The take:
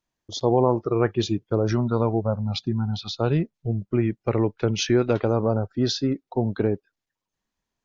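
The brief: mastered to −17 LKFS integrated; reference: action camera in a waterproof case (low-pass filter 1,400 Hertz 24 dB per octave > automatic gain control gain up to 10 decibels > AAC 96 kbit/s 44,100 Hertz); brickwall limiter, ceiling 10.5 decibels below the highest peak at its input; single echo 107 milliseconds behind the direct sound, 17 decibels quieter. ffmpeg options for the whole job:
ffmpeg -i in.wav -af "alimiter=limit=-17dB:level=0:latency=1,lowpass=frequency=1400:width=0.5412,lowpass=frequency=1400:width=1.3066,aecho=1:1:107:0.141,dynaudnorm=maxgain=10dB,volume=12dB" -ar 44100 -c:a aac -b:a 96k out.aac

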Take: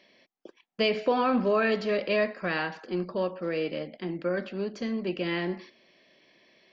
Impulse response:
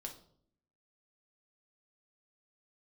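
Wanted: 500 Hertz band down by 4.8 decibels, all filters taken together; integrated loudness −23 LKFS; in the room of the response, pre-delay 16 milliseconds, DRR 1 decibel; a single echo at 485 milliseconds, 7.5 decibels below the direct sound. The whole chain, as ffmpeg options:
-filter_complex "[0:a]equalizer=frequency=500:width_type=o:gain=-6,aecho=1:1:485:0.422,asplit=2[link_01][link_02];[1:a]atrim=start_sample=2205,adelay=16[link_03];[link_02][link_03]afir=irnorm=-1:irlink=0,volume=2.5dB[link_04];[link_01][link_04]amix=inputs=2:normalize=0,volume=4.5dB"

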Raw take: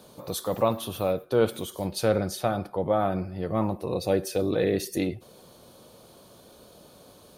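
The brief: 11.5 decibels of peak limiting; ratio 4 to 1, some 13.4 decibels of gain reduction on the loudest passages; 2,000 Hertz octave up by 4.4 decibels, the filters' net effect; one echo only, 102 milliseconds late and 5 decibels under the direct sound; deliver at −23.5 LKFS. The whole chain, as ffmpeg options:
ffmpeg -i in.wav -af "equalizer=frequency=2000:width_type=o:gain=6,acompressor=threshold=-34dB:ratio=4,alimiter=level_in=6.5dB:limit=-24dB:level=0:latency=1,volume=-6.5dB,aecho=1:1:102:0.562,volume=18dB" out.wav

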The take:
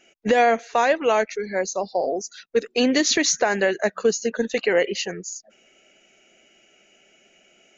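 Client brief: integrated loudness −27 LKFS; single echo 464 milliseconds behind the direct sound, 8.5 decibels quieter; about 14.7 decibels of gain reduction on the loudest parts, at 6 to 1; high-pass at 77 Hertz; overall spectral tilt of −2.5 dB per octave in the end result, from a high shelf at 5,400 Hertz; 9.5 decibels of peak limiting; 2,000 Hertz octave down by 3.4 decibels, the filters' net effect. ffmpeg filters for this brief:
ffmpeg -i in.wav -af "highpass=77,equalizer=frequency=2000:width_type=o:gain=-5,highshelf=frequency=5400:gain=6,acompressor=threshold=-31dB:ratio=6,alimiter=level_in=4dB:limit=-24dB:level=0:latency=1,volume=-4dB,aecho=1:1:464:0.376,volume=10.5dB" out.wav

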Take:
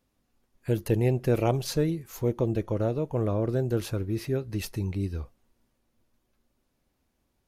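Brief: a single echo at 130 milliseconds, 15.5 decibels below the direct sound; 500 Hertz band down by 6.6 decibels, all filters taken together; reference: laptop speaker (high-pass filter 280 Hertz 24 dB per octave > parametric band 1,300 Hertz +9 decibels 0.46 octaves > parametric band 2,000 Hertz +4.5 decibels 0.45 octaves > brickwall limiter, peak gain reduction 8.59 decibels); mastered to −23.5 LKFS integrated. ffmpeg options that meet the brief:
ffmpeg -i in.wav -af "highpass=frequency=280:width=0.5412,highpass=frequency=280:width=1.3066,equalizer=frequency=500:width_type=o:gain=-8.5,equalizer=frequency=1300:width_type=o:width=0.46:gain=9,equalizer=frequency=2000:width_type=o:width=0.45:gain=4.5,aecho=1:1:130:0.168,volume=13.5dB,alimiter=limit=-10.5dB:level=0:latency=1" out.wav

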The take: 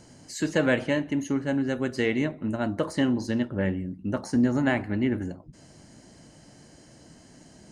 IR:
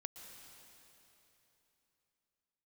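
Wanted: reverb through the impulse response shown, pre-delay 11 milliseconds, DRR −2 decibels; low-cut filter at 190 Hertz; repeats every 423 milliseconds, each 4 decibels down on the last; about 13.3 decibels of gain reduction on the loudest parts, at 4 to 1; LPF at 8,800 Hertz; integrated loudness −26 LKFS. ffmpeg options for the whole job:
-filter_complex "[0:a]highpass=190,lowpass=8800,acompressor=threshold=-36dB:ratio=4,aecho=1:1:423|846|1269|1692|2115|2538|2961|3384|3807:0.631|0.398|0.25|0.158|0.0994|0.0626|0.0394|0.0249|0.0157,asplit=2[link_01][link_02];[1:a]atrim=start_sample=2205,adelay=11[link_03];[link_02][link_03]afir=irnorm=-1:irlink=0,volume=5.5dB[link_04];[link_01][link_04]amix=inputs=2:normalize=0,volume=6.5dB"

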